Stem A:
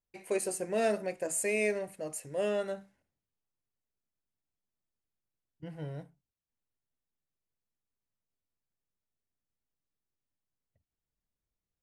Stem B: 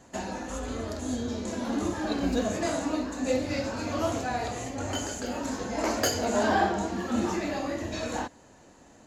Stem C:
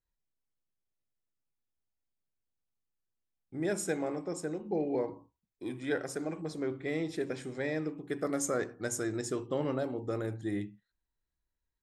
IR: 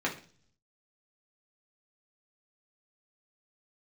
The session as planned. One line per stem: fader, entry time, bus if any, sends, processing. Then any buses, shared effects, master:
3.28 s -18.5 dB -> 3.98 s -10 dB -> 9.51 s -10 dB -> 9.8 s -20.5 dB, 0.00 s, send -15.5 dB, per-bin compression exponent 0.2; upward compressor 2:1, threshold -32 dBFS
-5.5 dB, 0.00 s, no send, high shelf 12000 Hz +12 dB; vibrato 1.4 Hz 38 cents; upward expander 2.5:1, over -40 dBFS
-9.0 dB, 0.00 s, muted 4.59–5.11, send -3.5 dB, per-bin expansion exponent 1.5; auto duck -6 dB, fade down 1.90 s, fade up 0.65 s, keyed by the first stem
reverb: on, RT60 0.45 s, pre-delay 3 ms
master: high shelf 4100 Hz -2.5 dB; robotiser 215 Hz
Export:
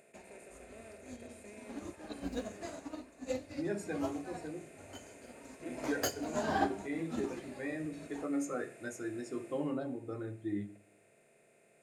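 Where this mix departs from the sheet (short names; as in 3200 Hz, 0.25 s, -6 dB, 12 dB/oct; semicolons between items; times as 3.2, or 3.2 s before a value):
stem A -18.5 dB -> -30.5 dB; stem B: missing vibrato 1.4 Hz 38 cents; master: missing robotiser 215 Hz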